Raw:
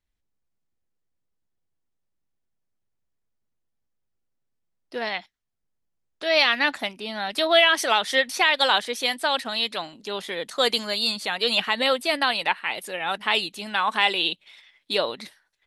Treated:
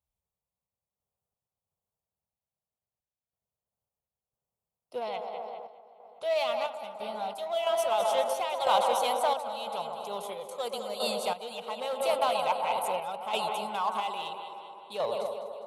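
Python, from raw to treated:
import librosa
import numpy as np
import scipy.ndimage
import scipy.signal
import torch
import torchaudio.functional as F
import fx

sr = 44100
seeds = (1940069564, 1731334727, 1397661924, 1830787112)

p1 = fx.peak_eq(x, sr, hz=4600.0, db=-12.0, octaves=0.99)
p2 = fx.fixed_phaser(p1, sr, hz=730.0, stages=4)
p3 = fx.echo_feedback(p2, sr, ms=204, feedback_pct=49, wet_db=-10.5)
p4 = 10.0 ** (-28.0 / 20.0) * (np.abs((p3 / 10.0 ** (-28.0 / 20.0) + 3.0) % 4.0 - 2.0) - 1.0)
p5 = p3 + (p4 * librosa.db_to_amplitude(-11.0))
p6 = fx.high_shelf(p5, sr, hz=10000.0, db=8.5, at=(9.96, 10.58))
p7 = p6 + fx.echo_wet_bandpass(p6, sr, ms=129, feedback_pct=73, hz=590.0, wet_db=-4.5, dry=0)
p8 = fx.tremolo_random(p7, sr, seeds[0], hz=3.0, depth_pct=75)
y = scipy.signal.sosfilt(scipy.signal.butter(2, 67.0, 'highpass', fs=sr, output='sos'), p8)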